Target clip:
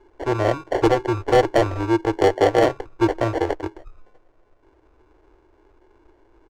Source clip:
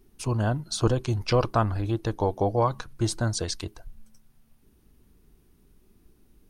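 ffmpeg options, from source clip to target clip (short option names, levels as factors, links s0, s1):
-af "acrusher=samples=35:mix=1:aa=0.000001,firequalizer=gain_entry='entry(110,0);entry(180,-21);entry(320,12);entry(3500,-2);entry(6700,-4);entry(11000,-17)':delay=0.05:min_phase=1,volume=2.66,asoftclip=hard,volume=0.376"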